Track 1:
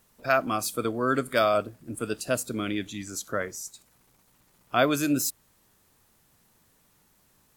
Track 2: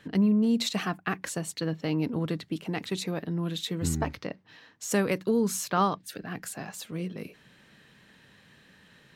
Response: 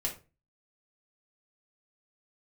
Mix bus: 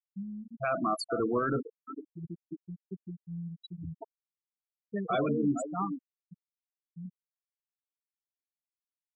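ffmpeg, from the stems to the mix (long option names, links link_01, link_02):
-filter_complex "[0:a]adelay=350,volume=1.5dB,asplit=3[link_01][link_02][link_03];[link_01]atrim=end=1.67,asetpts=PTS-STARTPTS,afade=type=out:start_time=1.666:duration=0.004:curve=hsin[link_04];[link_02]atrim=start=1.67:end=4.56,asetpts=PTS-STARTPTS,volume=0[link_05];[link_03]atrim=start=4.56,asetpts=PTS-STARTPTS,afade=type=in:duration=0.004:curve=hsin[link_06];[link_04][link_05][link_06]concat=n=3:v=0:a=1,asplit=3[link_07][link_08][link_09];[link_08]volume=-10.5dB[link_10];[link_09]volume=-14dB[link_11];[1:a]highshelf=frequency=5900:gain=10.5,volume=-9.5dB,afade=type=in:start_time=1.94:duration=0.35:silence=0.398107,asplit=3[link_12][link_13][link_14];[link_13]volume=-12dB[link_15];[link_14]apad=whole_len=348911[link_16];[link_07][link_16]sidechaincompress=threshold=-40dB:ratio=12:attack=7.2:release=532[link_17];[2:a]atrim=start_sample=2205[link_18];[link_10][link_15]amix=inputs=2:normalize=0[link_19];[link_19][link_18]afir=irnorm=-1:irlink=0[link_20];[link_11]aecho=0:1:452|904|1356|1808:1|0.3|0.09|0.027[link_21];[link_17][link_12][link_20][link_21]amix=inputs=4:normalize=0,afftfilt=real='re*gte(hypot(re,im),0.112)':imag='im*gte(hypot(re,im),0.112)':win_size=1024:overlap=0.75,alimiter=limit=-20.5dB:level=0:latency=1:release=12"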